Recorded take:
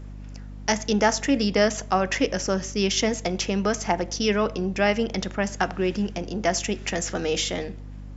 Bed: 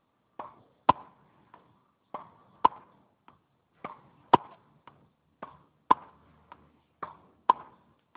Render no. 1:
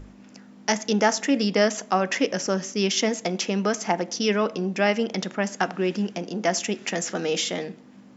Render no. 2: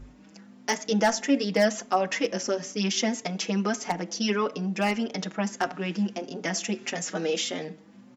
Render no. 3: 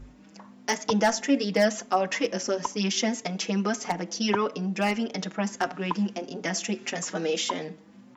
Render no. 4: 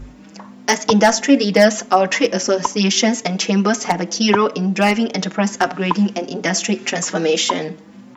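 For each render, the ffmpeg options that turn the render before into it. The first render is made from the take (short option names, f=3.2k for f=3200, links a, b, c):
-af "bandreject=f=50:t=h:w=6,bandreject=f=100:t=h:w=6,bandreject=f=150:t=h:w=6"
-filter_complex "[0:a]aeval=exprs='0.335*(abs(mod(val(0)/0.335+3,4)-2)-1)':c=same,asplit=2[a][b];[b]adelay=5.2,afreqshift=1.6[c];[a][c]amix=inputs=2:normalize=1"
-filter_complex "[1:a]volume=-9.5dB[a];[0:a][a]amix=inputs=2:normalize=0"
-af "volume=10.5dB,alimiter=limit=-1dB:level=0:latency=1"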